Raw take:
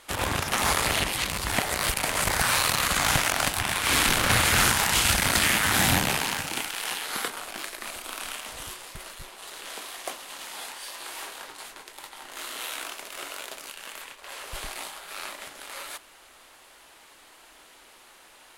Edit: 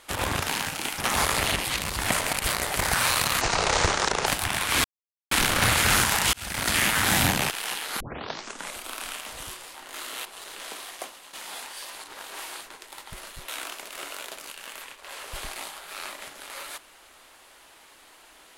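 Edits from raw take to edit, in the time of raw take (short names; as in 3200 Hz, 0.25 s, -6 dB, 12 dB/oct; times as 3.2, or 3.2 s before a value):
1.6–2.24 reverse
2.89–3.41 speed 61%
3.99 insert silence 0.47 s
5.01–5.49 fade in
6.18–6.7 move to 0.46
7.2 tape start 0.77 s
8.94–9.31 swap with 12.17–12.68
9.88–10.39 fade out, to -9.5 dB
11.01–11.67 reverse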